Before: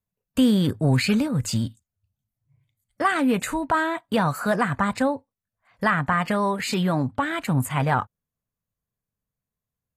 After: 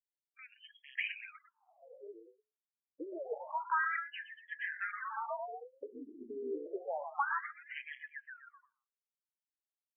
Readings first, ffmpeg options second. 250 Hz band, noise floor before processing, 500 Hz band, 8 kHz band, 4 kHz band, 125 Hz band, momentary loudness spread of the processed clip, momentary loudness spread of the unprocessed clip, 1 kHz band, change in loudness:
-29.5 dB, under -85 dBFS, -15.5 dB, under -40 dB, -20.5 dB, under -40 dB, 19 LU, 6 LU, -14.0 dB, -16.0 dB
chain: -filter_complex "[0:a]asplit=8[a][b][c][d][e][f][g][h];[b]adelay=120,afreqshift=45,volume=-12dB[i];[c]adelay=240,afreqshift=90,volume=-16dB[j];[d]adelay=360,afreqshift=135,volume=-20dB[k];[e]adelay=480,afreqshift=180,volume=-24dB[l];[f]adelay=600,afreqshift=225,volume=-28.1dB[m];[g]adelay=720,afreqshift=270,volume=-32.1dB[n];[h]adelay=840,afreqshift=315,volume=-36.1dB[o];[a][i][j][k][l][m][n][o]amix=inputs=8:normalize=0,asplit=2[p][q];[q]aeval=exprs='(mod(3.55*val(0)+1,2)-1)/3.55':c=same,volume=-8dB[r];[p][r]amix=inputs=2:normalize=0,highpass=f=97:w=0.5412,highpass=f=97:w=1.3066,afftdn=nr=34:nf=-33,areverse,acompressor=threshold=-27dB:ratio=16,areverse,lowshelf=f=310:g=-6,afftfilt=real='re*between(b*sr/1024,320*pow(2400/320,0.5+0.5*sin(2*PI*0.28*pts/sr))/1.41,320*pow(2400/320,0.5+0.5*sin(2*PI*0.28*pts/sr))*1.41)':imag='im*between(b*sr/1024,320*pow(2400/320,0.5+0.5*sin(2*PI*0.28*pts/sr))/1.41,320*pow(2400/320,0.5+0.5*sin(2*PI*0.28*pts/sr))*1.41)':win_size=1024:overlap=0.75,volume=1dB"

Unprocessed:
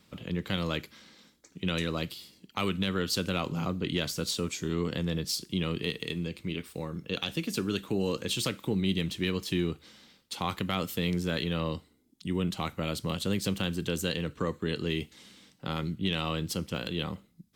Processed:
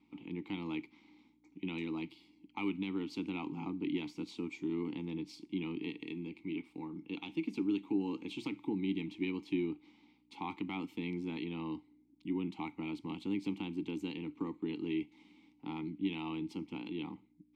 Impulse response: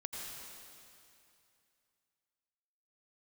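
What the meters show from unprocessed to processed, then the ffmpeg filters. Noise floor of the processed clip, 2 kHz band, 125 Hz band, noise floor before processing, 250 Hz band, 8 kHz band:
-68 dBFS, -10.0 dB, -13.5 dB, -65 dBFS, -3.5 dB, under -25 dB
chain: -filter_complex "[0:a]bandreject=f=60:t=h:w=6,bandreject=f=120:t=h:w=6,aeval=exprs='val(0)+0.001*(sin(2*PI*60*n/s)+sin(2*PI*2*60*n/s)/2+sin(2*PI*3*60*n/s)/3+sin(2*PI*4*60*n/s)/4+sin(2*PI*5*60*n/s)/5)':c=same,asplit=3[a][b][c];[a]bandpass=f=300:t=q:w=8,volume=0dB[d];[b]bandpass=f=870:t=q:w=8,volume=-6dB[e];[c]bandpass=f=2.24k:t=q:w=8,volume=-9dB[f];[d][e][f]amix=inputs=3:normalize=0,volume=5.5dB"

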